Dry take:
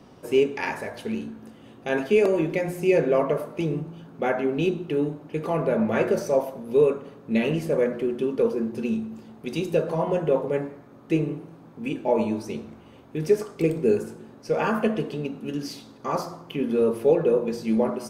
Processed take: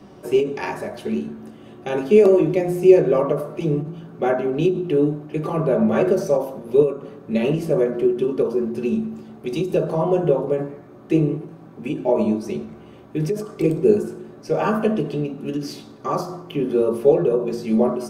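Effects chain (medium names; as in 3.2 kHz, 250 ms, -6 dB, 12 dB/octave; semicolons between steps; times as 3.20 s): dynamic bell 2 kHz, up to -7 dB, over -46 dBFS, Q 1.8; on a send at -2.5 dB: reverberation RT60 0.15 s, pre-delay 3 ms; on the sum: endings held to a fixed fall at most 130 dB/s; trim +2 dB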